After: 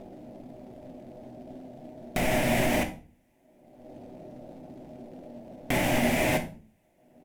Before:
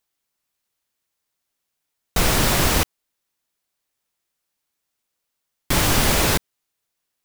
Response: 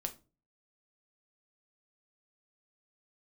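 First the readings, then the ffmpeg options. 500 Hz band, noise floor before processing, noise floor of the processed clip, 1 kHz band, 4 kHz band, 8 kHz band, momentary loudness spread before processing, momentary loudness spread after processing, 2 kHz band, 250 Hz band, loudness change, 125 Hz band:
−1.5 dB, −79 dBFS, −66 dBFS, −6.0 dB, −12.5 dB, −14.0 dB, 7 LU, 21 LU, −5.0 dB, −1.5 dB, −7.5 dB, −8.5 dB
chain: -filter_complex "[0:a]firequalizer=gain_entry='entry(130,0);entry(260,6);entry(440,-8);entry(630,8);entry(1200,-16);entry(2000,-2);entry(4200,-19);entry(6100,-13);entry(11000,-8)':delay=0.05:min_phase=1,acrossover=split=500|1600[link_01][link_02][link_03];[link_01]acompressor=mode=upward:threshold=-24dB:ratio=2.5[link_04];[link_02]alimiter=level_in=3.5dB:limit=-24dB:level=0:latency=1,volume=-3.5dB[link_05];[link_04][link_05][link_03]amix=inputs=3:normalize=0,acompressor=threshold=-32dB:ratio=5,asplit=2[link_06][link_07];[link_07]acrusher=bits=3:mode=log:mix=0:aa=0.000001,volume=-10dB[link_08];[link_06][link_08]amix=inputs=2:normalize=0,asplit=2[link_09][link_10];[link_10]highpass=frequency=720:poles=1,volume=19dB,asoftclip=type=tanh:threshold=-12dB[link_11];[link_09][link_11]amix=inputs=2:normalize=0,lowpass=frequency=4100:poles=1,volume=-6dB[link_12];[1:a]atrim=start_sample=2205,asetrate=31311,aresample=44100[link_13];[link_12][link_13]afir=irnorm=-1:irlink=0"

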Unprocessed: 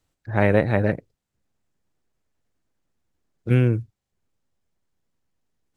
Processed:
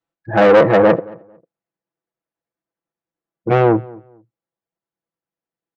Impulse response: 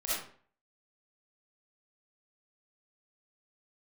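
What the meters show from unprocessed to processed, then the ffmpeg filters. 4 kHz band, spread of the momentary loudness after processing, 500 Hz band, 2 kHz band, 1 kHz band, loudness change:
can't be measured, 10 LU, +12.0 dB, +7.0 dB, +14.0 dB, +8.0 dB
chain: -filter_complex "[0:a]afftdn=noise_reduction=21:noise_floor=-36,adynamicequalizer=threshold=0.0224:dfrequency=460:dqfactor=1:tfrequency=460:tqfactor=1:attack=5:release=100:ratio=0.375:range=3:mode=boostabove:tftype=bell,aecho=1:1:6:0.59,acontrast=56,asoftclip=type=tanh:threshold=-13.5dB,bandpass=frequency=790:width_type=q:width=0.51:csg=0,asplit=2[link_01][link_02];[link_02]adelay=224,lowpass=frequency=1400:poles=1,volume=-22dB,asplit=2[link_03][link_04];[link_04]adelay=224,lowpass=frequency=1400:poles=1,volume=0.24[link_05];[link_03][link_05]amix=inputs=2:normalize=0[link_06];[link_01][link_06]amix=inputs=2:normalize=0,volume=8.5dB"

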